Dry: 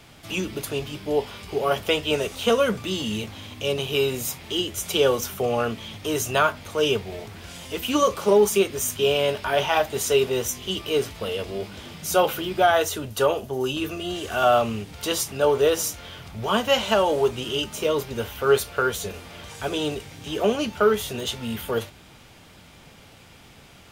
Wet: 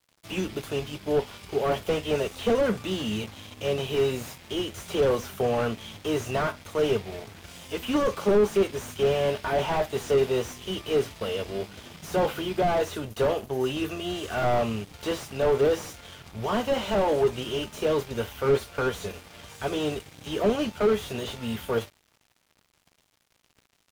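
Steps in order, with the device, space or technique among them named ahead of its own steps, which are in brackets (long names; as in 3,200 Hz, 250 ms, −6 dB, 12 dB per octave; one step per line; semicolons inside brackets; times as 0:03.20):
early transistor amplifier (dead-zone distortion −43.5 dBFS; slew-rate limiting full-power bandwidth 59 Hz)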